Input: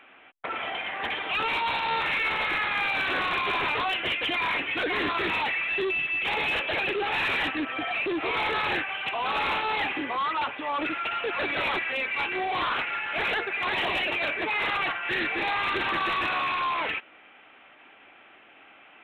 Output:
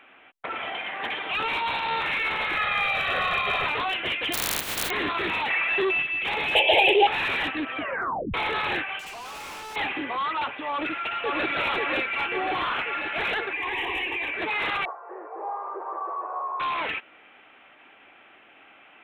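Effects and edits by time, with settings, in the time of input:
0.71–1.26 s: high-pass 110 Hz
2.57–3.66 s: comb 1.6 ms, depth 76%
4.32–4.89 s: spectral contrast reduction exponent 0.12
5.50–6.03 s: peaking EQ 960 Hz +8 dB 2.3 oct
6.55–7.07 s: FFT filter 110 Hz 0 dB, 220 Hz -9 dB, 380 Hz +9 dB, 860 Hz +14 dB, 1.3 kHz -19 dB, 2.2 kHz +6 dB, 3.2 kHz +14 dB, 5.4 kHz -13 dB, 7.8 kHz +12 dB
7.78 s: tape stop 0.56 s
8.99–9.76 s: hard clipper -37.5 dBFS
10.71–11.48 s: echo throw 540 ms, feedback 65%, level -1.5 dB
12.15–12.93 s: band-stop 3.8 kHz
13.53–14.34 s: static phaser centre 920 Hz, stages 8
14.85–16.60 s: elliptic band-pass 410–1100 Hz, stop band 60 dB

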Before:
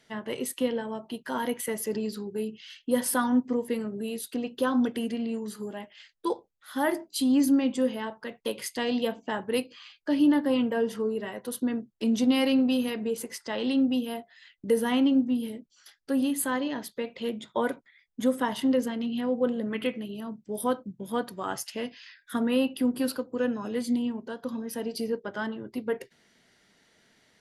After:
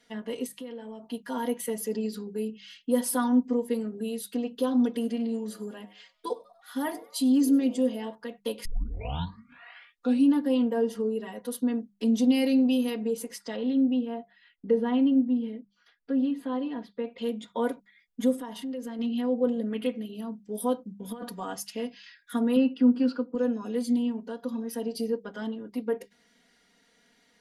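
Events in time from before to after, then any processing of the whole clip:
0.46–1.03 s: compression 5:1, threshold -38 dBFS
4.70–8.15 s: frequency-shifting echo 96 ms, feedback 51%, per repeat +110 Hz, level -22 dB
8.65 s: tape start 1.69 s
13.56–17.18 s: distance through air 310 m
18.36–18.99 s: compression 3:1, threshold -36 dBFS
21.04–21.44 s: compressor with a negative ratio -33 dBFS, ratio -0.5
22.56–23.35 s: cabinet simulation 180–4700 Hz, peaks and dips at 240 Hz +6 dB, 670 Hz -4 dB, 1.4 kHz +9 dB, 3.7 kHz -7 dB
whole clip: hum notches 50/100/150/200 Hz; dynamic bell 1.7 kHz, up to -6 dB, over -45 dBFS, Q 0.95; comb 4.2 ms, depth 92%; trim -4 dB

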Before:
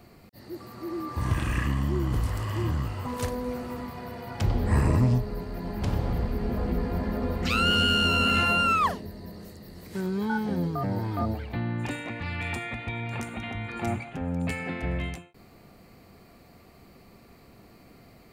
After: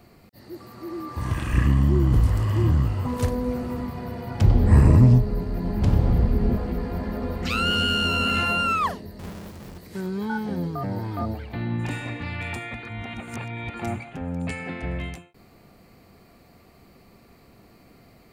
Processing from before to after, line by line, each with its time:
1.53–6.57 s: bass shelf 410 Hz +9 dB
9.19–9.78 s: square wave that keeps the level
11.47–12.02 s: reverb throw, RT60 2.2 s, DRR 1.5 dB
12.83–13.74 s: reverse
14.43–14.96 s: careless resampling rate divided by 2×, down none, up filtered

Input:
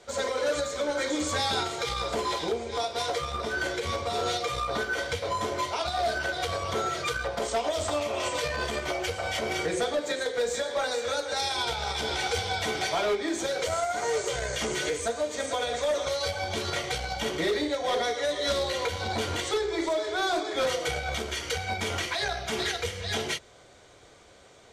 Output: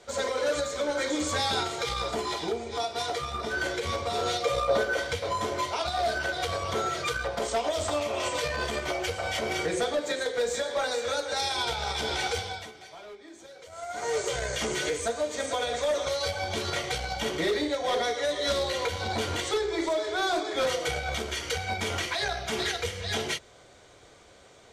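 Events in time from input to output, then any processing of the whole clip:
2.11–3.51 s: comb of notches 530 Hz
4.45–4.97 s: peaking EQ 560 Hz +12.5 dB 0.44 oct
12.25–14.19 s: dip -18.5 dB, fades 0.47 s

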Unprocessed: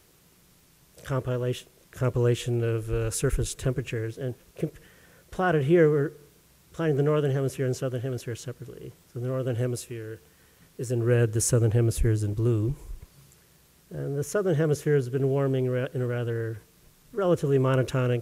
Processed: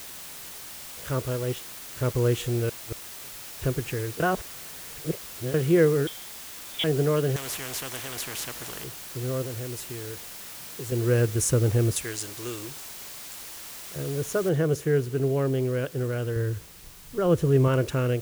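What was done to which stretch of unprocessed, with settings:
1.26–2.15 s: companding laws mixed up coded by A
2.69–3.62 s: inverted gate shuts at -22 dBFS, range -35 dB
4.20–5.54 s: reverse
6.07–6.84 s: frequency inversion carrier 3.6 kHz
7.36–8.84 s: spectrum-flattening compressor 4:1
9.42–10.92 s: compression, threshold -32 dBFS
11.96–13.96 s: frequency weighting ITU-R 468
14.49 s: noise floor step -41 dB -49 dB
16.36–17.68 s: bass shelf 120 Hz +11 dB

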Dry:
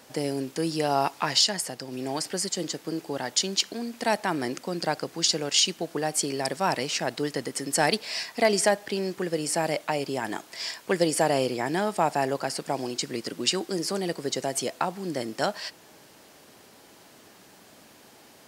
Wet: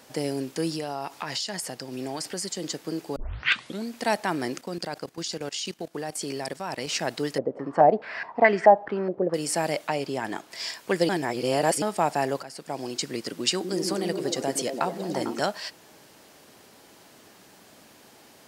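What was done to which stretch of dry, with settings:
0.74–2.64 s: compression, threshold -27 dBFS
3.16 s: tape start 0.70 s
4.61–6.87 s: level held to a coarse grid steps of 16 dB
7.38–9.34 s: step-sequenced low-pass 4.7 Hz 580–1800 Hz
9.87–10.50 s: treble shelf 9.5 kHz -> 4.7 kHz -7 dB
11.09–11.82 s: reverse
12.43–12.99 s: fade in, from -14.5 dB
13.50–15.40 s: repeats whose band climbs or falls 112 ms, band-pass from 260 Hz, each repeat 0.7 oct, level -1 dB

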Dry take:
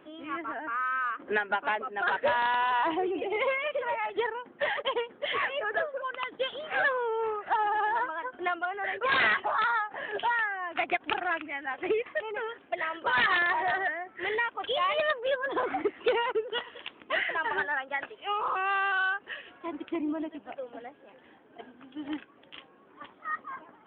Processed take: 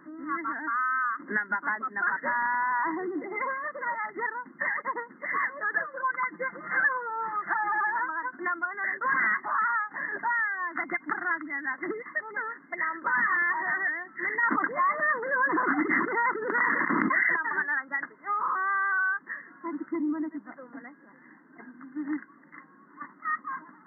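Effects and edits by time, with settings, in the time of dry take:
5.76–7.90 s: comb 5.8 ms, depth 92%
14.43–17.36 s: level flattener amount 100%
19.22–20.53 s: treble shelf 3.2 kHz -10 dB
whole clip: FFT band-pass 140–2100 Hz; high-order bell 570 Hz -15 dB 1.3 oct; compression 2:1, threshold -33 dBFS; trim +6 dB

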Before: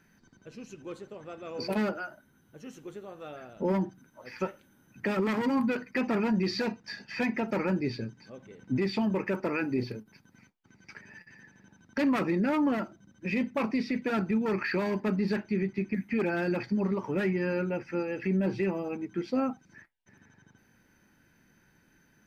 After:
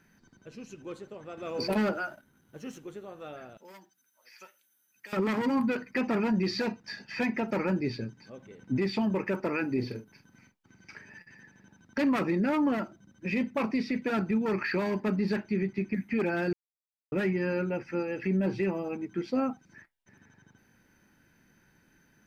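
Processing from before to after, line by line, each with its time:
1.37–2.78 s: waveshaping leveller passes 1
3.57–5.13 s: differentiator
9.79–11.07 s: doubling 44 ms -9 dB
16.53–17.12 s: mute

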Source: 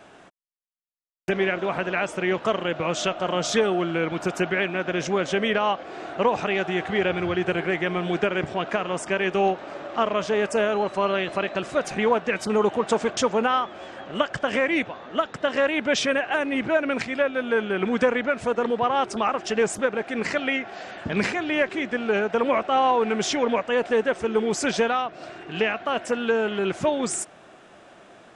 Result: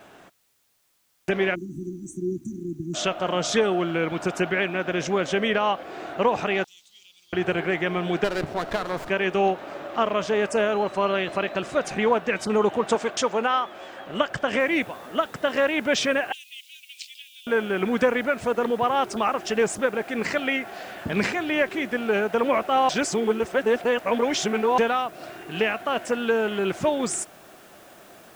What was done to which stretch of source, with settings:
1.55–2.94 s: spectral selection erased 380–5700 Hz
6.64–7.33 s: inverse Chebyshev high-pass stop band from 1.8 kHz, stop band 50 dB
8.24–9.10 s: sliding maximum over 9 samples
12.95–14.07 s: bass shelf 220 Hz -10.5 dB
14.60 s: noise floor step -68 dB -56 dB
16.32–17.47 s: steep high-pass 2.9 kHz 48 dB/octave
22.89–24.78 s: reverse

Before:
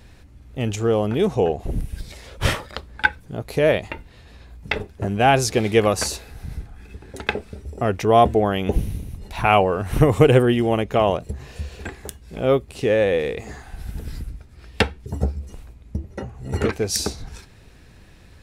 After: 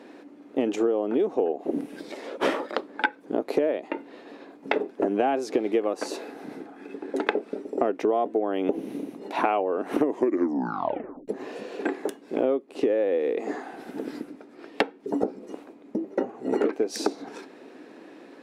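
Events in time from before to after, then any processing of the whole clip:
10.02 s: tape stop 1.26 s
whole clip: elliptic high-pass 280 Hz, stop band 70 dB; tilt EQ -4.5 dB/octave; compression 20:1, threshold -26 dBFS; trim +6 dB

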